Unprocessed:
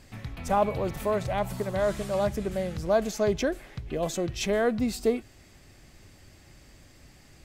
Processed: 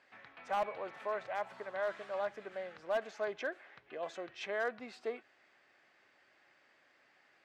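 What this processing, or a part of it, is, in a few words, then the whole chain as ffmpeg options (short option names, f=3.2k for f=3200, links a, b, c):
megaphone: -af "highpass=620,lowpass=2.7k,equalizer=f=1.6k:t=o:w=0.56:g=5,asoftclip=type=hard:threshold=-20.5dB,volume=-7dB"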